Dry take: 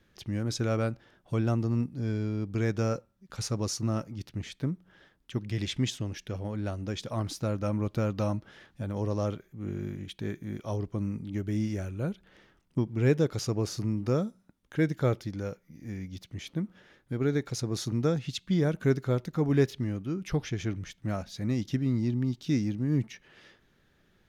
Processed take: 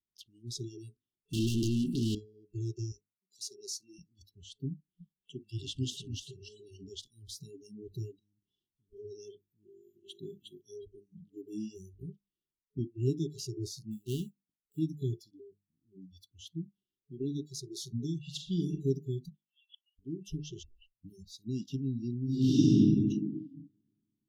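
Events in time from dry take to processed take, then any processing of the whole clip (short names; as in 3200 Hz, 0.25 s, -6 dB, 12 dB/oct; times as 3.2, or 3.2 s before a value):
1.33–2.15 overdrive pedal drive 39 dB, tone 6300 Hz, clips at -17.5 dBFS
2.92–3.99 HPF 260 Hz
4.72–6.84 warbling echo 0.29 s, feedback 37%, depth 164 cents, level -5 dB
8.14–8.93 compressor, threshold -42 dBFS
9.58–10.18 echo throw 0.36 s, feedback 30%, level -2.5 dB
11.94–12.8 AM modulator 53 Hz, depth 35%
13.91–14.79 switching dead time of 0.26 ms
15.37–16.02 air absorption 410 m
18.21–18.75 reverb throw, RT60 0.89 s, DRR 3.5 dB
19.29–19.99 Chebyshev band-pass 1500–3400 Hz, order 4
20.63 tape start 0.48 s
22.23–22.72 reverb throw, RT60 2.4 s, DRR -11.5 dB
whole clip: notches 50/100/150/200/250/300/350 Hz; spectral noise reduction 28 dB; FFT band-reject 430–2700 Hz; gain -4.5 dB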